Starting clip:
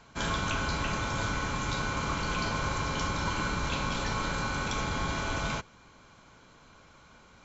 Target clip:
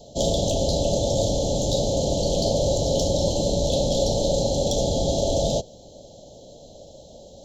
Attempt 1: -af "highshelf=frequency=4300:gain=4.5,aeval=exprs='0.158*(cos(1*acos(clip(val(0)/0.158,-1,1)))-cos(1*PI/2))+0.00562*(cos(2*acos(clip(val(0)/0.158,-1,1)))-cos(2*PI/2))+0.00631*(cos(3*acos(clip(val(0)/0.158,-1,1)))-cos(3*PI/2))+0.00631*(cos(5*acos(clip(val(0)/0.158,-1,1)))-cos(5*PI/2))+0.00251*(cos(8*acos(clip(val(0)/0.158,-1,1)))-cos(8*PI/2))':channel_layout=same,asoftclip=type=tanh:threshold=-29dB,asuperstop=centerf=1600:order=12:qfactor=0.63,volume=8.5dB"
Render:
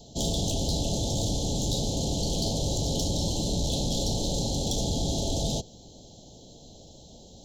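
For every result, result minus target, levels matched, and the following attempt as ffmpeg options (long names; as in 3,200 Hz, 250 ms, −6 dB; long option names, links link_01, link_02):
500 Hz band −7.0 dB; soft clipping: distortion +10 dB
-af "highshelf=frequency=4300:gain=4.5,aeval=exprs='0.158*(cos(1*acos(clip(val(0)/0.158,-1,1)))-cos(1*PI/2))+0.00562*(cos(2*acos(clip(val(0)/0.158,-1,1)))-cos(2*PI/2))+0.00631*(cos(3*acos(clip(val(0)/0.158,-1,1)))-cos(3*PI/2))+0.00631*(cos(5*acos(clip(val(0)/0.158,-1,1)))-cos(5*PI/2))+0.00251*(cos(8*acos(clip(val(0)/0.158,-1,1)))-cos(8*PI/2))':channel_layout=same,asoftclip=type=tanh:threshold=-29dB,asuperstop=centerf=1600:order=12:qfactor=0.63,equalizer=frequency=570:width=2.7:gain=14,volume=8.5dB"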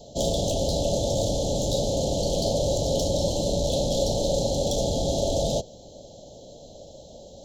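soft clipping: distortion +10 dB
-af "highshelf=frequency=4300:gain=4.5,aeval=exprs='0.158*(cos(1*acos(clip(val(0)/0.158,-1,1)))-cos(1*PI/2))+0.00562*(cos(2*acos(clip(val(0)/0.158,-1,1)))-cos(2*PI/2))+0.00631*(cos(3*acos(clip(val(0)/0.158,-1,1)))-cos(3*PI/2))+0.00631*(cos(5*acos(clip(val(0)/0.158,-1,1)))-cos(5*PI/2))+0.00251*(cos(8*acos(clip(val(0)/0.158,-1,1)))-cos(8*PI/2))':channel_layout=same,asoftclip=type=tanh:threshold=-21.5dB,asuperstop=centerf=1600:order=12:qfactor=0.63,equalizer=frequency=570:width=2.7:gain=14,volume=8.5dB"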